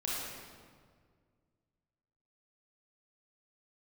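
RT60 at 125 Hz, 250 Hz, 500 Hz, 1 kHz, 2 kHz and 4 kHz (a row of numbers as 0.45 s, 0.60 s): 2.6 s, 2.3 s, 2.0 s, 1.7 s, 1.4 s, 1.2 s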